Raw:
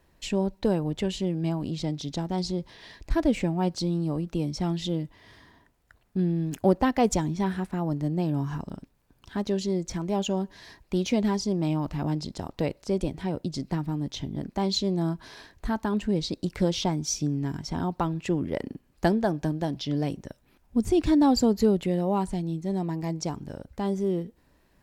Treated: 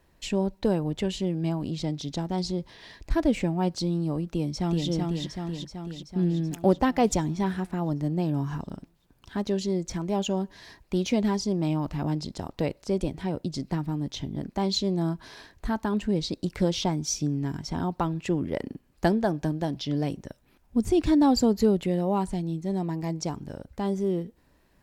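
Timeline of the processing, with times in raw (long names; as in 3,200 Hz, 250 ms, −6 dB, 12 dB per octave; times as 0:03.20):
0:04.32–0:04.88: delay throw 380 ms, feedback 65%, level −2.5 dB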